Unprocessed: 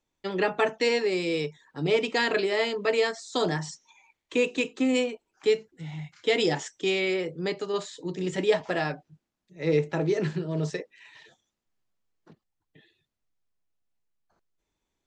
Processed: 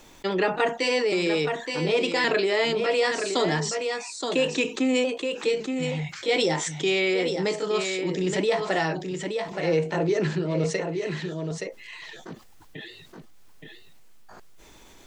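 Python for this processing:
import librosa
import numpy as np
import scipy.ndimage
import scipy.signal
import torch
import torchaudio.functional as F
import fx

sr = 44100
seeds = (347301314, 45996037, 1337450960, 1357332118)

p1 = fx.pitch_trill(x, sr, semitones=1.0, every_ms=560)
p2 = fx.peak_eq(p1, sr, hz=86.0, db=-4.5, octaves=2.2)
p3 = p2 + fx.echo_single(p2, sr, ms=872, db=-11.0, dry=0)
y = fx.env_flatten(p3, sr, amount_pct=50)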